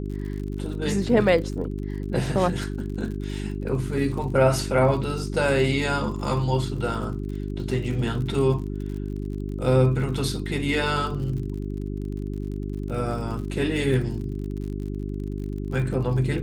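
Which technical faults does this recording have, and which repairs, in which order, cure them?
crackle 48 per s -34 dBFS
hum 50 Hz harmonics 8 -30 dBFS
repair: de-click; de-hum 50 Hz, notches 8

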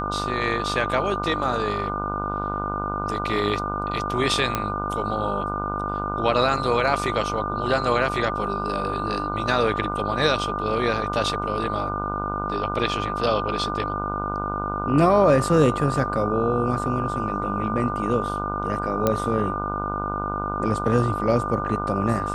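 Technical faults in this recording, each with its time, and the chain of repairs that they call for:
buzz 50 Hz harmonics 30 -30 dBFS
whine 1.2 kHz -28 dBFS
4.55 s: pop -8 dBFS
19.07 s: pop -7 dBFS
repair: de-click; de-hum 50 Hz, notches 30; band-stop 1.2 kHz, Q 30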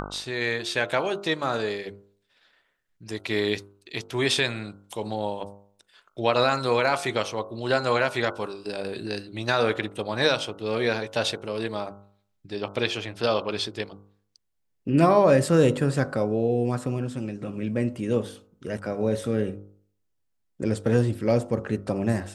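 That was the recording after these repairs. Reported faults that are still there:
nothing left

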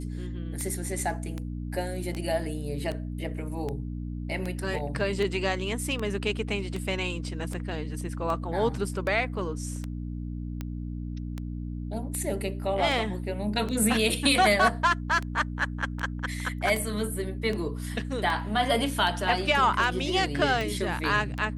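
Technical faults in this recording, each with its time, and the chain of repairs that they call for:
hum 60 Hz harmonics 5 -34 dBFS
tick 78 rpm -20 dBFS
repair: de-click; de-hum 60 Hz, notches 5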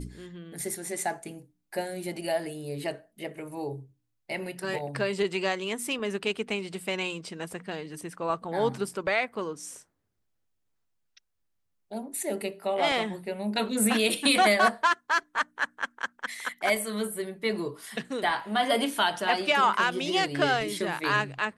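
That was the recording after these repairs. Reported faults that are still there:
nothing left

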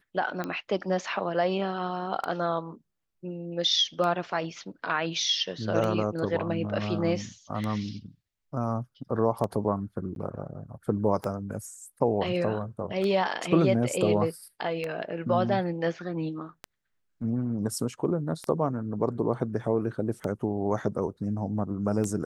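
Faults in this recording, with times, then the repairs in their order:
tick 33 1/3 rpm -18 dBFS
10.15–10.16 s: dropout 12 ms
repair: de-click; interpolate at 10.15 s, 12 ms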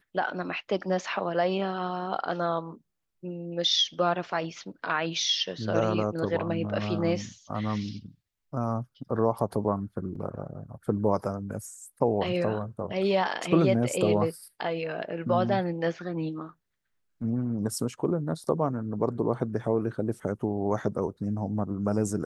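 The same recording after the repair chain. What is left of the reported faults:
nothing left

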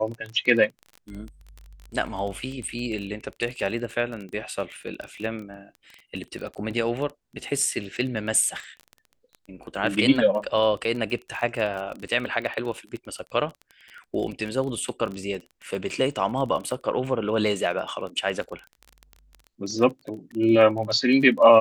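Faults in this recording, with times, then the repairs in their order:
crackle 22 per s -31 dBFS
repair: de-click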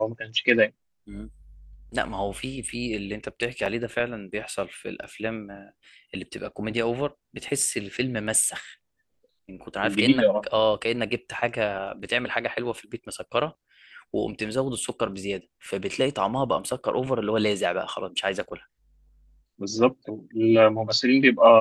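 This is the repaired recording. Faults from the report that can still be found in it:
nothing left

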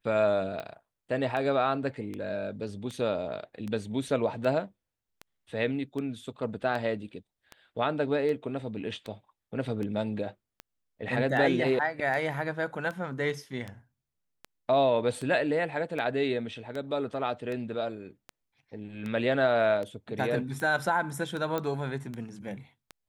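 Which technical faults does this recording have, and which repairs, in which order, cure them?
tick 78 rpm -24 dBFS
21.58 s: pop -17 dBFS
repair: de-click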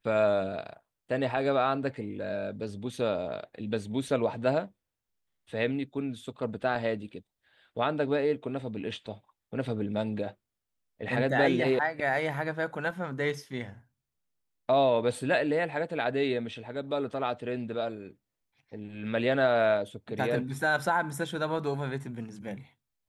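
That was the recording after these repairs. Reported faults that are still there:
nothing left

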